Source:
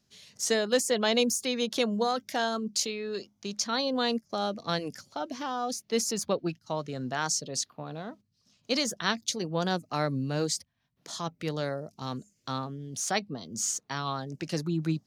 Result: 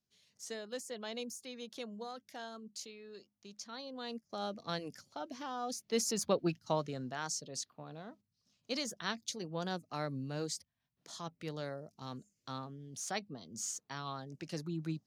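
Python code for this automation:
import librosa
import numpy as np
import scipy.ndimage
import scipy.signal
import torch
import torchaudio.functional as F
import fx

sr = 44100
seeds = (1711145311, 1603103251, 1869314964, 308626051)

y = fx.gain(x, sr, db=fx.line((3.96, -17.0), (4.44, -8.5), (5.47, -8.5), (6.71, 0.0), (7.14, -9.5)))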